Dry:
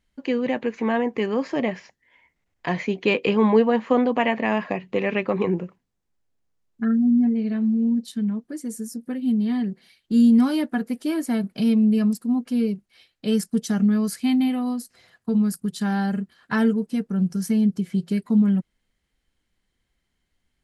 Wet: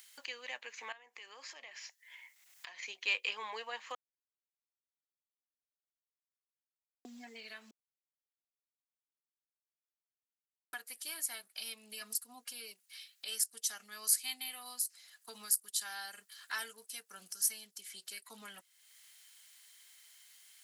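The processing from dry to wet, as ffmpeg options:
ffmpeg -i in.wav -filter_complex "[0:a]asettb=1/sr,asplit=3[link_01][link_02][link_03];[link_01]atrim=end=0.924[link_04];[link_02]atrim=start=0.92:end=2.83,asetpts=PTS-STARTPTS,afade=type=in:duration=0.004:curve=qsin,afade=type=out:start_time=1.906:duration=0.004:curve=qsin,acompressor=threshold=-41dB:ratio=3:attack=3.2:release=140:knee=1:detection=peak[link_05];[link_03]atrim=start=2.826[link_06];[link_04][link_05]acrossfade=duration=0.004:curve1=hsin:curve2=qsin[link_07];[link_07][link_06]acrossfade=duration=0.004:curve1=qsin:curve2=hsin,asettb=1/sr,asplit=3[link_08][link_09][link_10];[link_08]atrim=end=12.014[link_11];[link_09]atrim=start=12.01:end=12.53,asetpts=PTS-STARTPTS,afade=type=in:duration=0.004:curve=qsin,afade=type=out:start_time=0.516:duration=0.004:curve=qsin,aecho=1:1:4.2:0.91,atrim=end_sample=22932[link_12];[link_10]atrim=start=12.526[link_13];[link_11][link_12]acrossfade=duration=0.004:curve1=hsin:curve2=qsin[link_14];[link_14][link_13]acrossfade=duration=0.004:curve1=qsin:curve2=hsin,asettb=1/sr,asplit=3[link_15][link_16][link_17];[link_15]atrim=end=13.804[link_18];[link_16]atrim=start=13.8:end=17.83,asetpts=PTS-STARTPTS,afade=type=in:duration=0.004:curve=qsin,afade=type=out:start_time=4.026:duration=0.004:curve=qsin,bass=frequency=250:gain=1,treble=frequency=4000:gain=3[link_19];[link_17]atrim=start=17.826[link_20];[link_18][link_19]acrossfade=duration=0.004:curve1=hsin:curve2=qsin[link_21];[link_21][link_20]acrossfade=duration=0.004:curve1=qsin:curve2=hsin,asplit=5[link_22][link_23][link_24][link_25][link_26];[link_22]atrim=end=3.95,asetpts=PTS-STARTPTS,afade=type=out:start_time=3.946:duration=0.004:curve=hsin[link_27];[link_23]atrim=start=3.95:end=7.05,asetpts=PTS-STARTPTS,volume=0[link_28];[link_24]atrim=start=7.05:end=7.71,asetpts=PTS-STARTPTS,afade=type=in:duration=0.004:curve=hsin,afade=type=out:start_time=0.656:duration=0.004:curve=hsin[link_29];[link_25]atrim=start=7.71:end=10.73,asetpts=PTS-STARTPTS,volume=0[link_30];[link_26]atrim=start=10.73,asetpts=PTS-STARTPTS,afade=type=in:duration=0.004:curve=hsin[link_31];[link_27][link_28][link_29][link_30][link_31]concat=n=5:v=0:a=1,highpass=730,aderivative,acompressor=mode=upward:threshold=-43dB:ratio=2.5,volume=2dB" out.wav

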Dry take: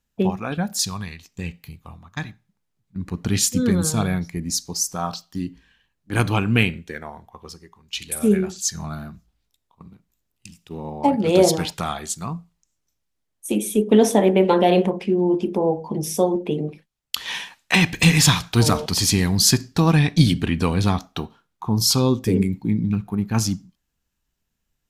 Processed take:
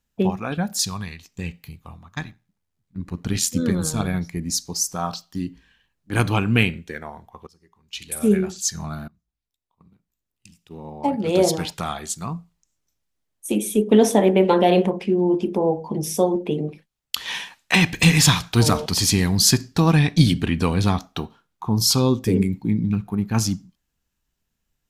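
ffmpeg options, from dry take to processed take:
ffmpeg -i in.wav -filter_complex "[0:a]asplit=3[link_01][link_02][link_03];[link_01]afade=type=out:start_time=2.19:duration=0.02[link_04];[link_02]tremolo=f=84:d=0.571,afade=type=in:start_time=2.19:duration=0.02,afade=type=out:start_time=4.13:duration=0.02[link_05];[link_03]afade=type=in:start_time=4.13:duration=0.02[link_06];[link_04][link_05][link_06]amix=inputs=3:normalize=0,asplit=3[link_07][link_08][link_09];[link_07]atrim=end=7.47,asetpts=PTS-STARTPTS,afade=type=out:start_time=7.466:duration=0.004:curve=hsin:silence=0.0749894[link_10];[link_08]atrim=start=7.47:end=9.08,asetpts=PTS-STARTPTS,afade=type=in:duration=0.84:silence=0.0749894,afade=type=out:start_time=1.606:duration=0.004:curve=hsin:silence=0.0707946[link_11];[link_09]atrim=start=9.08,asetpts=PTS-STARTPTS,afade=type=in:duration=3.28:silence=0.0707946[link_12];[link_10][link_11][link_12]concat=n=3:v=0:a=1" out.wav

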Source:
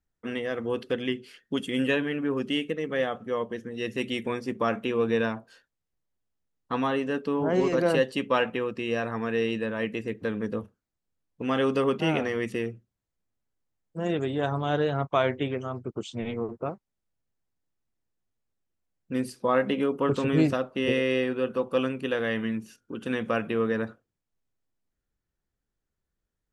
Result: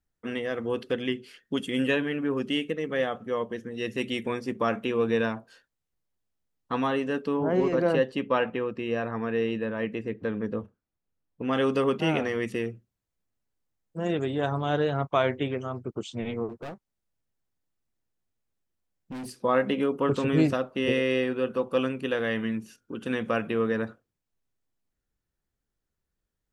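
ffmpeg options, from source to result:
ffmpeg -i in.wav -filter_complex "[0:a]asettb=1/sr,asplit=3[link_01][link_02][link_03];[link_01]atrim=end=7.374[link_04];[link_02]atrim=start=7.37:end=11.53,asetpts=PTS-STARTPTS,afade=type=in:duration=0.004:curve=qsin,afade=type=out:start_time=4.156:duration=0.004:curve=qsin,lowpass=frequency=2100:poles=1[link_05];[link_03]atrim=start=11.526[link_06];[link_04][link_05]acrossfade=duration=0.004:curve1=hsin:curve2=qsin[link_07];[link_07][link_06]acrossfade=duration=0.004:curve1=qsin:curve2=hsin,asettb=1/sr,asplit=3[link_08][link_09][link_10];[link_08]atrim=end=16.494[link_11];[link_09]atrim=start=16.49:end=19.32,asetpts=PTS-STARTPTS,afade=type=in:duration=0.004:curve=qsin,afade=type=out:start_time=2.826:duration=0.004:curve=qsin,asoftclip=type=hard:threshold=-34.5dB[link_12];[link_10]atrim=start=19.316[link_13];[link_11][link_12]acrossfade=duration=0.004:curve1=hsin:curve2=qsin[link_14];[link_14][link_13]acrossfade=duration=0.004:curve1=qsin:curve2=hsin" out.wav

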